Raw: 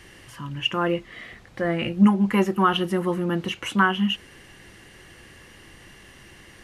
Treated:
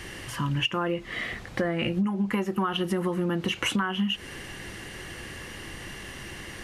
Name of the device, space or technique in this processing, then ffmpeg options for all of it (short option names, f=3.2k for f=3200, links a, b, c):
serial compression, leveller first: -af "acompressor=threshold=-26dB:ratio=2,acompressor=threshold=-31dB:ratio=10,volume=8dB"